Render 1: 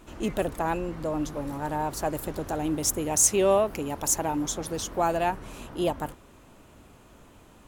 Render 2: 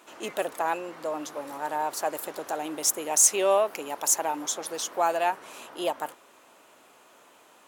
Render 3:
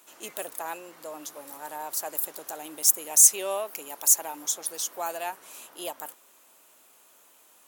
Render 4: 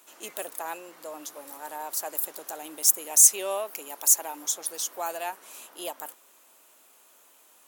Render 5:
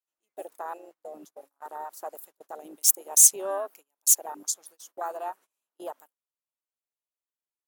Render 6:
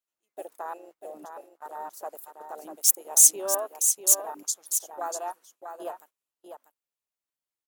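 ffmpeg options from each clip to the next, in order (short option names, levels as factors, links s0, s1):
-af "highpass=540,acontrast=28,volume=0.708"
-af "aemphasis=mode=production:type=75fm,volume=0.398"
-af "highpass=190"
-af "afwtdn=0.0224,agate=range=0.0501:threshold=0.00355:ratio=16:detection=peak"
-af "aecho=1:1:643:0.422"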